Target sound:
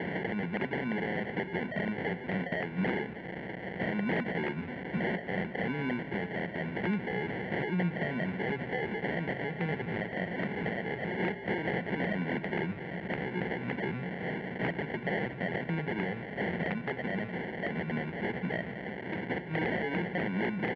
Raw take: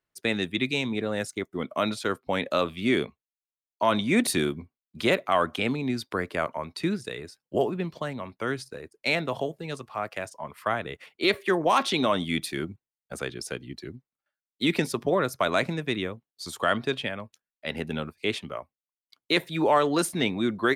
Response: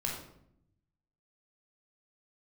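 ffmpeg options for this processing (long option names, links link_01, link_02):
-filter_complex "[0:a]aeval=exprs='val(0)+0.5*0.0224*sgn(val(0))':channel_layout=same,acompressor=threshold=-37dB:ratio=4,acrusher=samples=35:mix=1:aa=0.000001,aeval=exprs='val(0)+0.00158*(sin(2*PI*60*n/s)+sin(2*PI*2*60*n/s)/2+sin(2*PI*3*60*n/s)/3+sin(2*PI*4*60*n/s)/4+sin(2*PI*5*60*n/s)/5)':channel_layout=same,aeval=exprs='(mod(35.5*val(0)+1,2)-1)/35.5':channel_layout=same,highpass=170,equalizer=frequency=180:width_type=q:width=4:gain=7,equalizer=frequency=290:width_type=q:width=4:gain=-5,equalizer=frequency=600:width_type=q:width=4:gain=-5,equalizer=frequency=1100:width_type=q:width=4:gain=-10,equalizer=frequency=2000:width_type=q:width=4:gain=8,lowpass=frequency=2600:width=0.5412,lowpass=frequency=2600:width=1.3066,asplit=2[link_01][link_02];[link_02]adelay=1050,volume=-18dB,highshelf=frequency=4000:gain=-23.6[link_03];[link_01][link_03]amix=inputs=2:normalize=0,asplit=2[link_04][link_05];[1:a]atrim=start_sample=2205[link_06];[link_05][link_06]afir=irnorm=-1:irlink=0,volume=-21dB[link_07];[link_04][link_07]amix=inputs=2:normalize=0,volume=7dB"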